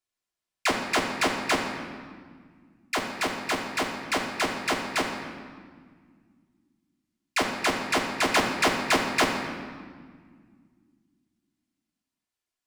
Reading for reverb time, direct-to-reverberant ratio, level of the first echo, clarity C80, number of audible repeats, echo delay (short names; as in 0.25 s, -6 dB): 1.8 s, -1.0 dB, none, 5.5 dB, none, none